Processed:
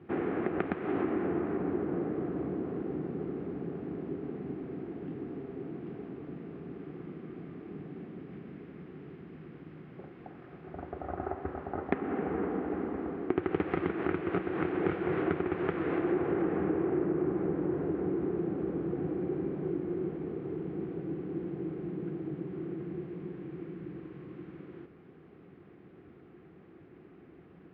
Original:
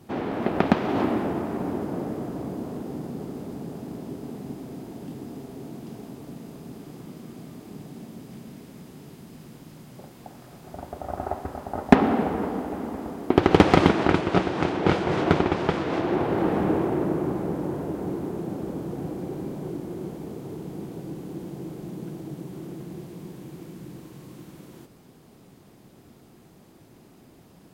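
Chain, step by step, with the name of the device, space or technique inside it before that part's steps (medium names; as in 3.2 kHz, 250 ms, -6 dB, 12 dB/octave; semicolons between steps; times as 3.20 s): bass amplifier (compression 5:1, threshold -26 dBFS, peak gain reduction 17 dB; cabinet simulation 74–2300 Hz, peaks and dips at 120 Hz -8 dB, 230 Hz -7 dB, 360 Hz +4 dB, 610 Hz -8 dB, 920 Hz -9 dB)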